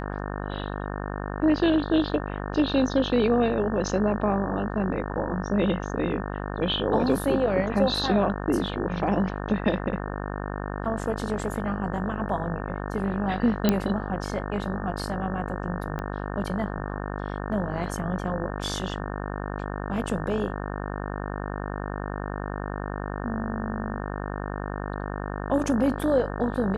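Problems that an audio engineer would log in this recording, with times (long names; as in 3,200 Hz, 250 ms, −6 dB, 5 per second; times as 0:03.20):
mains buzz 50 Hz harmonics 36 −32 dBFS
0:13.69: click −7 dBFS
0:15.99: click −20 dBFS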